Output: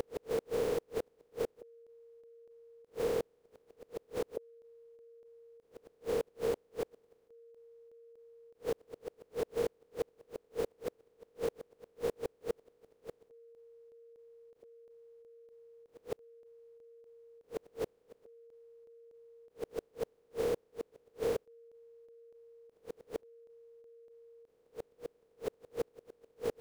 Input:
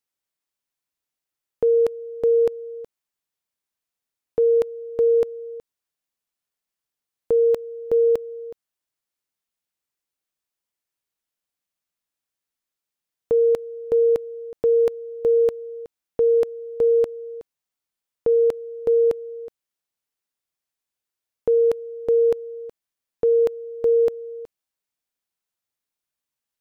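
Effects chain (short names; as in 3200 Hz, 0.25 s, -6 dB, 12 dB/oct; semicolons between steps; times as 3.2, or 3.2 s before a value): per-bin compression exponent 0.2; limiter -20 dBFS, peak gain reduction 10 dB; flipped gate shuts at -27 dBFS, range -39 dB; gain +4.5 dB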